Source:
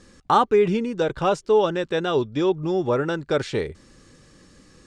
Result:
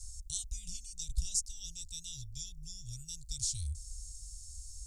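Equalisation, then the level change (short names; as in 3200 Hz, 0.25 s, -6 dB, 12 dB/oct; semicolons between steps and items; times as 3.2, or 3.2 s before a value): inverse Chebyshev band-stop 240–1800 Hz, stop band 70 dB; +13.5 dB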